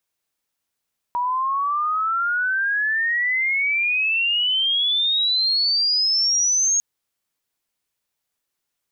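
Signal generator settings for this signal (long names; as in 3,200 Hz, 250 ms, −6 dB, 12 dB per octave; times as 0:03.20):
glide logarithmic 960 Hz → 6,600 Hz −19.5 dBFS → −16 dBFS 5.65 s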